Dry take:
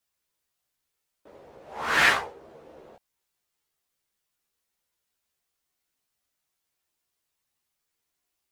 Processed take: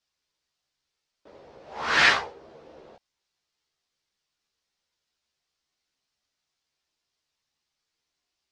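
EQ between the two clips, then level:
low-pass with resonance 5,100 Hz, resonance Q 1.8
0.0 dB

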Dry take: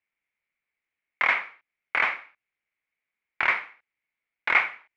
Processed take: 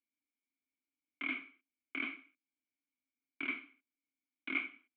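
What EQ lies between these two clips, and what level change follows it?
formant filter i
high-frequency loss of the air 430 metres
phaser with its sweep stopped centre 510 Hz, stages 6
+12.0 dB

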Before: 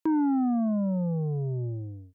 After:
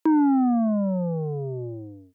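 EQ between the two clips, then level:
high-pass filter 220 Hz 12 dB per octave
+6.5 dB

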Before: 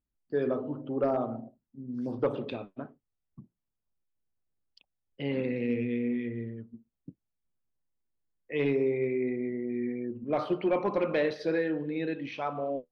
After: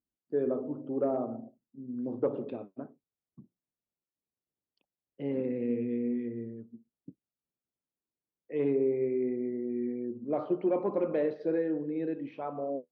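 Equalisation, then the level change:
resonant band-pass 350 Hz, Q 0.74
0.0 dB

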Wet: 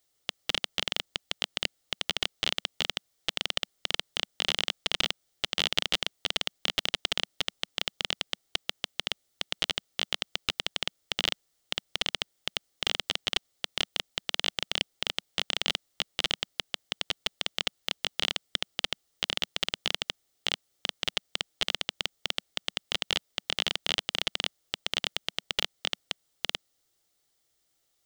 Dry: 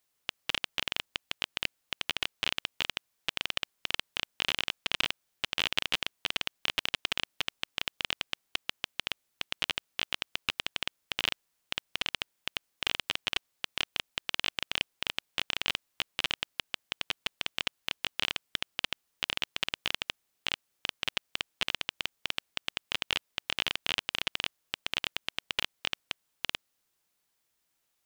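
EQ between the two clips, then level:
thirty-one-band graphic EQ 200 Hz −11 dB, 1,000 Hz −11 dB, 1,600 Hz −7 dB, 2,500 Hz −9 dB, 12,500 Hz −10 dB
+5.5 dB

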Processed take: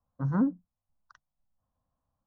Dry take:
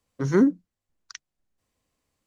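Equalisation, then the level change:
low-pass filter 1,200 Hz 12 dB per octave
phaser with its sweep stopped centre 930 Hz, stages 4
0.0 dB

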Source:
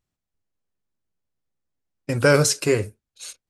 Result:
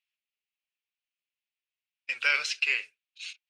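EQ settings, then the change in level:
dynamic equaliser 7,300 Hz, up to −7 dB, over −35 dBFS, Q 1.1
high-pass with resonance 2,600 Hz, resonance Q 3.8
high-frequency loss of the air 160 metres
0.0 dB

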